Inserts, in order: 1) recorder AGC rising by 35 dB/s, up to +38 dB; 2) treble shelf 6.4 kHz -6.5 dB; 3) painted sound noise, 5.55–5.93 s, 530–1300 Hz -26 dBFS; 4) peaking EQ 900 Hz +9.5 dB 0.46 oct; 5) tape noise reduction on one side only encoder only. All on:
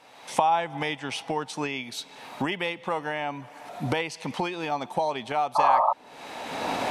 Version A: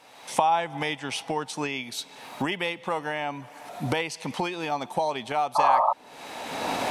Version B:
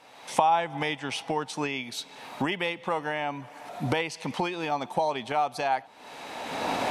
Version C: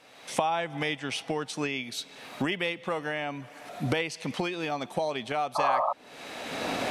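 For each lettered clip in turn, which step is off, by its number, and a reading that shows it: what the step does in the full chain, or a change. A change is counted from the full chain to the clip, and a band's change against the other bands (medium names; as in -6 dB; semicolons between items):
2, 8 kHz band +3.0 dB; 3, 1 kHz band -2.5 dB; 4, 1 kHz band -6.0 dB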